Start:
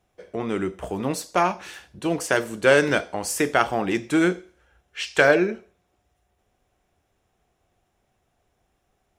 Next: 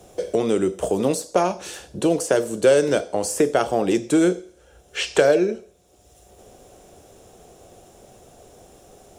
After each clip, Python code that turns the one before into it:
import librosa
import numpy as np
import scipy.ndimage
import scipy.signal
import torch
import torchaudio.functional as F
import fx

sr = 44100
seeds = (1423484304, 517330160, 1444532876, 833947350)

y = fx.graphic_eq_10(x, sr, hz=(500, 1000, 2000, 8000), db=(8, -4, -8, 7))
y = fx.band_squash(y, sr, depth_pct=70)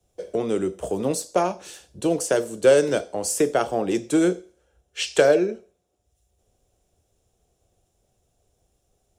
y = fx.band_widen(x, sr, depth_pct=70)
y = F.gain(torch.from_numpy(y), -3.5).numpy()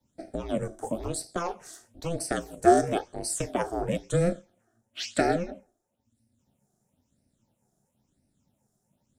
y = fx.phaser_stages(x, sr, stages=8, low_hz=100.0, high_hz=1000.0, hz=1.0, feedback_pct=20)
y = y * np.sin(2.0 * np.pi * 170.0 * np.arange(len(y)) / sr)